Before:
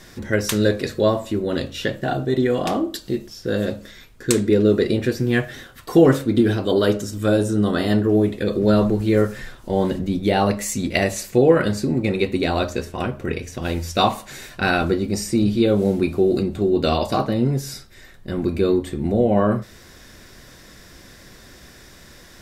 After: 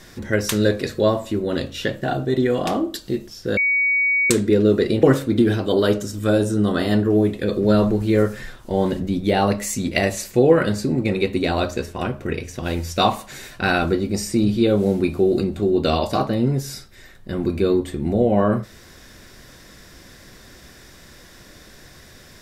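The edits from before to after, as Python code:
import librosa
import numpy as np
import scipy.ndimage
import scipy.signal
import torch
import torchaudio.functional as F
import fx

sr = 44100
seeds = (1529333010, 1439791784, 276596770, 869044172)

y = fx.edit(x, sr, fx.bleep(start_s=3.57, length_s=0.73, hz=2250.0, db=-15.5),
    fx.cut(start_s=5.03, length_s=0.99), tone=tone)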